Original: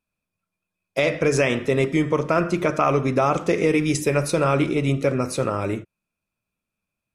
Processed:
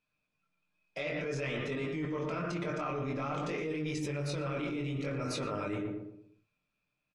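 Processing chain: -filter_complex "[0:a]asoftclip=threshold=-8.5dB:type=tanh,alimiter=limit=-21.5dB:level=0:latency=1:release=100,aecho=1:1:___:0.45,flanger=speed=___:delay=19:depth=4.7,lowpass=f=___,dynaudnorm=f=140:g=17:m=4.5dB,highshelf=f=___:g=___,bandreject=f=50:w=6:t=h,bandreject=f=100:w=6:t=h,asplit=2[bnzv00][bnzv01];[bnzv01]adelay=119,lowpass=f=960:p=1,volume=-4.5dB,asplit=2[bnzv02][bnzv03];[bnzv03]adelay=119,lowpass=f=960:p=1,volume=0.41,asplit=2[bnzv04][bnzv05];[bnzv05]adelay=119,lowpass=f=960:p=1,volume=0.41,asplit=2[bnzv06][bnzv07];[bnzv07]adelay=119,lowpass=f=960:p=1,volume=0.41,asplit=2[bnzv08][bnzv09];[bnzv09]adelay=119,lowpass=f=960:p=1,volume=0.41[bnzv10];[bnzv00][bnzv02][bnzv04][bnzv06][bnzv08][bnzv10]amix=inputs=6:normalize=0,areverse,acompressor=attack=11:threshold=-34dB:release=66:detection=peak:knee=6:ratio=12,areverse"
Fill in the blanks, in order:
6.7, 0.53, 3.5k, 2.1k, 10.5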